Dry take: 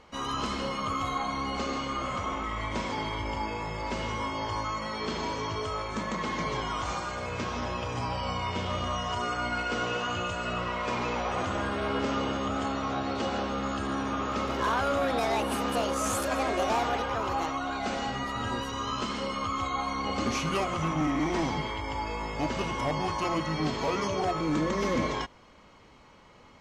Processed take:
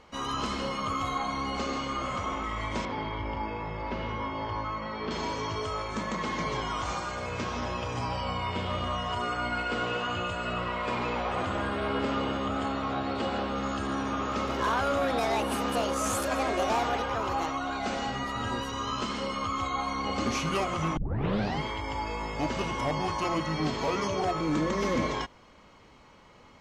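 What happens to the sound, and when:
0:02.85–0:05.11: high-frequency loss of the air 250 metres
0:08.23–0:13.56: parametric band 6,000 Hz −10 dB 0.38 octaves
0:20.97: tape start 0.63 s

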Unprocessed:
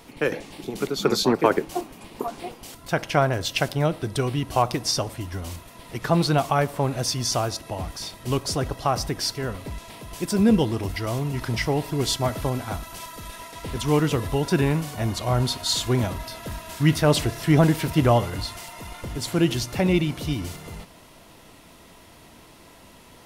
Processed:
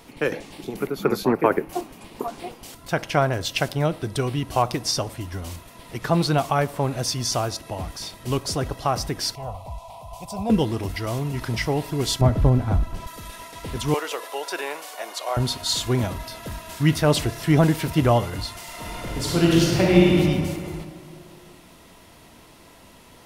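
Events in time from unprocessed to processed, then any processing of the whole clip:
0:00.76–0:01.73: flat-topped bell 5,200 Hz −11 dB
0:09.35–0:10.50: drawn EQ curve 100 Hz 0 dB, 360 Hz −21 dB, 750 Hz +11 dB, 1,100 Hz +1 dB, 1,600 Hz −27 dB, 2,400 Hz −8 dB
0:12.21–0:13.07: spectral tilt −3.5 dB per octave
0:13.94–0:15.37: high-pass filter 490 Hz 24 dB per octave
0:18.63–0:20.14: thrown reverb, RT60 2.2 s, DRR −4.5 dB

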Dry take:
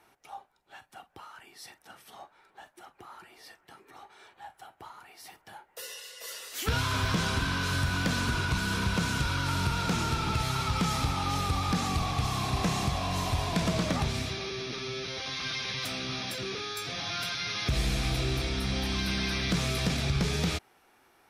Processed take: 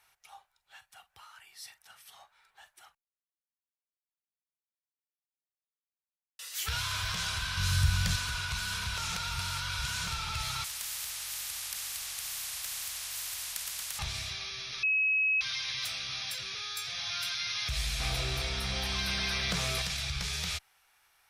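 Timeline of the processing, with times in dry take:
0:02.95–0:06.39: silence
0:07.57–0:08.16: bass and treble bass +13 dB, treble +3 dB
0:08.98–0:10.08: reverse
0:10.64–0:13.99: every bin compressed towards the loudest bin 10 to 1
0:14.83–0:15.41: beep over 2,560 Hz −23 dBFS
0:18.00–0:19.82: parametric band 380 Hz +13.5 dB 2.8 octaves
whole clip: guitar amp tone stack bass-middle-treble 10-0-10; level +2 dB

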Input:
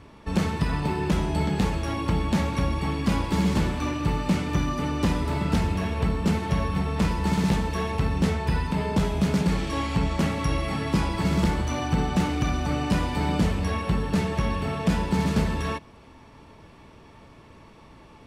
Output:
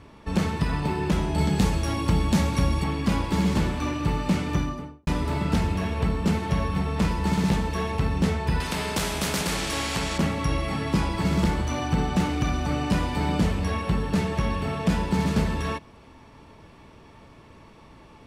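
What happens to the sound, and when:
0:01.38–0:02.84: bass and treble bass +3 dB, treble +7 dB
0:04.50–0:05.07: fade out and dull
0:08.60–0:10.18: every bin compressed towards the loudest bin 2 to 1

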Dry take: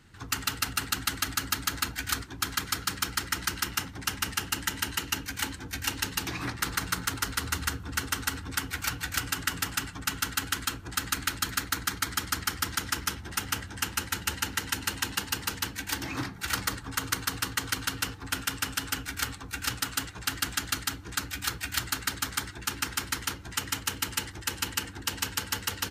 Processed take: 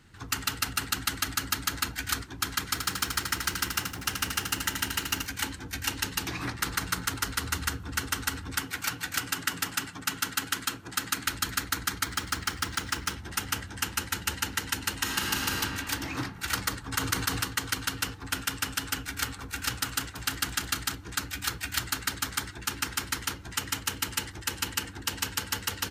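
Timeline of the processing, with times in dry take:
0:02.64–0:05.26: feedback echo at a low word length 80 ms, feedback 55%, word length 8 bits, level −6 dB
0:08.62–0:11.26: high-pass filter 130 Hz
0:12.04–0:13.14: running median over 3 samples
0:14.96–0:15.61: thrown reverb, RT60 2.6 s, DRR −2 dB
0:16.92–0:17.42: envelope flattener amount 50%
0:18.98–0:20.95: delay that swaps between a low-pass and a high-pass 166 ms, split 1,300 Hz, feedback 59%, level −10 dB

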